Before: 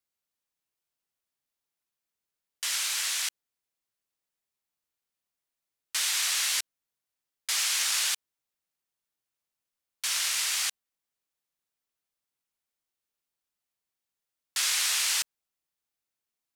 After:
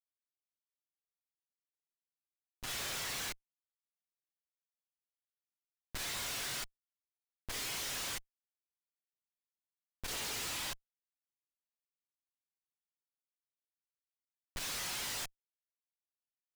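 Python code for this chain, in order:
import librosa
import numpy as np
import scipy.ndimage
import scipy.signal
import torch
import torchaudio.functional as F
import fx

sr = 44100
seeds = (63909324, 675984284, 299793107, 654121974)

y = fx.lower_of_two(x, sr, delay_ms=7.1)
y = fx.chorus_voices(y, sr, voices=6, hz=0.18, base_ms=29, depth_ms=1.6, mix_pct=60)
y = fx.schmitt(y, sr, flips_db=-39.0)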